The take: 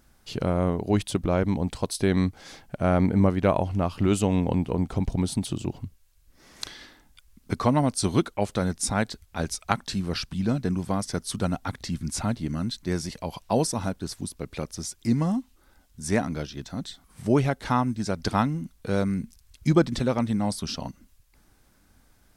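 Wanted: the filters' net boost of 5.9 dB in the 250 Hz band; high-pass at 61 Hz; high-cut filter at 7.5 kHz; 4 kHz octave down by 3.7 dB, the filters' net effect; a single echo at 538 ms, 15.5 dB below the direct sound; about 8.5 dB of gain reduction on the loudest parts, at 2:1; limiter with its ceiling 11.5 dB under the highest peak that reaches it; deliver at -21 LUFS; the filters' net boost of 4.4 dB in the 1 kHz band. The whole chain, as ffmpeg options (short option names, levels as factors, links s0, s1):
-af "highpass=61,lowpass=7500,equalizer=f=250:t=o:g=7.5,equalizer=f=1000:t=o:g=5.5,equalizer=f=4000:t=o:g=-4.5,acompressor=threshold=0.0447:ratio=2,alimiter=limit=0.112:level=0:latency=1,aecho=1:1:538:0.168,volume=3.16"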